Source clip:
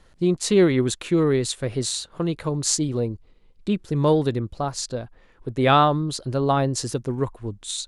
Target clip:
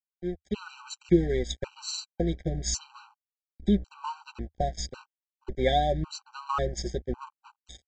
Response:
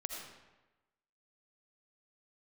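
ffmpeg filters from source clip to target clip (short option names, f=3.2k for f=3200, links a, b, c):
-af "acompressor=threshold=-41dB:ratio=2,aeval=exprs='val(0)+0.00631*(sin(2*PI*60*n/s)+sin(2*PI*2*60*n/s)/2+sin(2*PI*3*60*n/s)/3+sin(2*PI*4*60*n/s)/4+sin(2*PI*5*60*n/s)/5)':c=same,aecho=1:1:5.5:0.72,flanger=delay=4:depth=1.9:regen=56:speed=1.4:shape=sinusoidal,dynaudnorm=f=380:g=3:m=12dB,adynamicequalizer=threshold=0.0141:dfrequency=200:dqfactor=2.7:tfrequency=200:tqfactor=2.7:attack=5:release=100:ratio=0.375:range=2.5:mode=cutabove:tftype=bell,agate=range=-33dB:threshold=-24dB:ratio=3:detection=peak,aresample=16000,aeval=exprs='sgn(val(0))*max(abs(val(0))-0.00944,0)':c=same,aresample=44100,lowshelf=f=100:t=q:w=3:g=7,afftfilt=real='re*gt(sin(2*PI*0.91*pts/sr)*(1-2*mod(floor(b*sr/1024/780),2)),0)':imag='im*gt(sin(2*PI*0.91*pts/sr)*(1-2*mod(floor(b*sr/1024/780),2)),0)':win_size=1024:overlap=0.75"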